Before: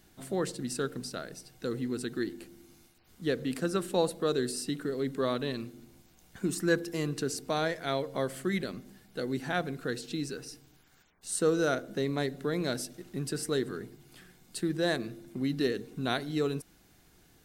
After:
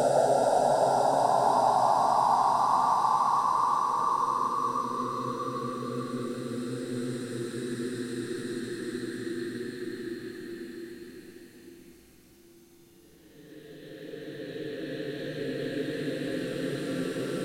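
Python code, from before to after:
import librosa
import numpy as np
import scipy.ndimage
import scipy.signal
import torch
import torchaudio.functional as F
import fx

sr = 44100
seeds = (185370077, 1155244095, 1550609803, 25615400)

y = fx.spec_paint(x, sr, seeds[0], shape='rise', start_s=0.43, length_s=0.99, low_hz=430.0, high_hz=1200.0, level_db=-24.0)
y = fx.paulstretch(y, sr, seeds[1], factor=6.3, window_s=1.0, from_s=0.77)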